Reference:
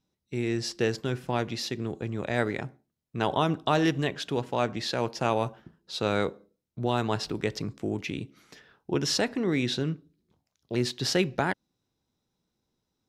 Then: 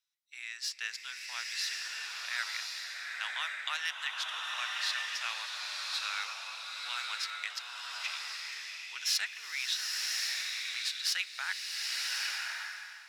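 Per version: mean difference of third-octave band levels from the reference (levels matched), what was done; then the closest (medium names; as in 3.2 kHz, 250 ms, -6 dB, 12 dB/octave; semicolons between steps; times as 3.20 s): 22.0 dB: tracing distortion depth 0.023 ms; high-pass 1.5 kHz 24 dB/octave; swelling reverb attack 1100 ms, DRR -1.5 dB; trim -1.5 dB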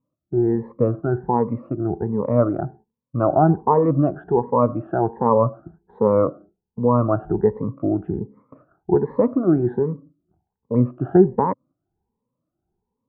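11.5 dB: drifting ripple filter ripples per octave 0.95, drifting +1.3 Hz, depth 21 dB; gate -51 dBFS, range -7 dB; steep low-pass 1.2 kHz 36 dB/octave; trim +5.5 dB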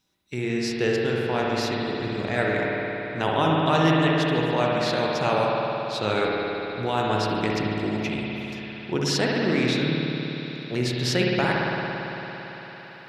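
8.5 dB: peaking EQ 2.1 kHz +2.5 dB 1.7 oct; spring tank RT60 3.6 s, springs 56 ms, chirp 20 ms, DRR -3.5 dB; tape noise reduction on one side only encoder only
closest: third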